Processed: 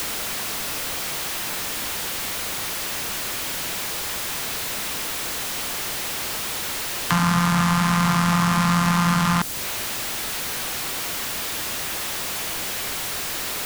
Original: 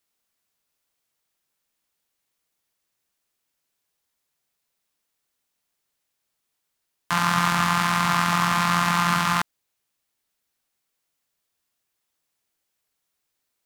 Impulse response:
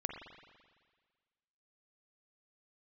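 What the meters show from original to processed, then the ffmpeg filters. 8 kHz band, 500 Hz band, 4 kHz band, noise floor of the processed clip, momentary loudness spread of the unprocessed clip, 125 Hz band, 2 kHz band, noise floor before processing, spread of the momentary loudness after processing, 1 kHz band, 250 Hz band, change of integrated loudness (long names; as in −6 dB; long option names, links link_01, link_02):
+11.0 dB, +6.5 dB, +6.5 dB, −28 dBFS, 4 LU, +7.5 dB, +1.5 dB, −79 dBFS, 6 LU, 0.0 dB, +7.5 dB, −2.0 dB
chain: -filter_complex "[0:a]aeval=exprs='val(0)+0.5*0.0473*sgn(val(0))':channel_layout=same,acrossover=split=390|4400[link_01][link_02][link_03];[link_01]acompressor=threshold=-27dB:ratio=4[link_04];[link_02]acompressor=threshold=-30dB:ratio=4[link_05];[link_03]acompressor=threshold=-37dB:ratio=4[link_06];[link_04][link_05][link_06]amix=inputs=3:normalize=0,volume=8dB"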